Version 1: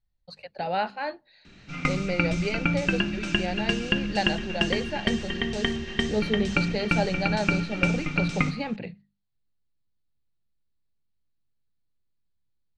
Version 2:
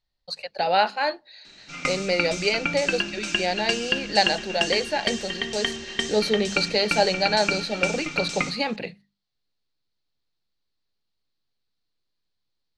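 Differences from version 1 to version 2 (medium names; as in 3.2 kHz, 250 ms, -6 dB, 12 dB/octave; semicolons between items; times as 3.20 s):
speech +7.0 dB; master: add tone controls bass -12 dB, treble +11 dB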